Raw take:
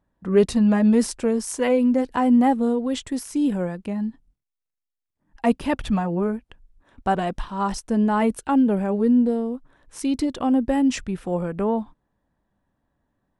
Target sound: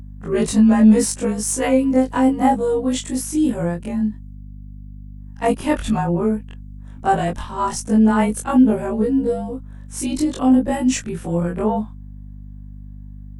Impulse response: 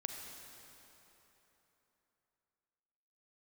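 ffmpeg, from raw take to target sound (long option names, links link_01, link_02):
-af "afftfilt=real='re':imag='-im':win_size=2048:overlap=0.75,aexciter=amount=1.3:drive=9.2:freq=6300,aeval=exprs='val(0)+0.00794*(sin(2*PI*50*n/s)+sin(2*PI*2*50*n/s)/2+sin(2*PI*3*50*n/s)/3+sin(2*PI*4*50*n/s)/4+sin(2*PI*5*50*n/s)/5)':channel_layout=same,volume=7.5dB"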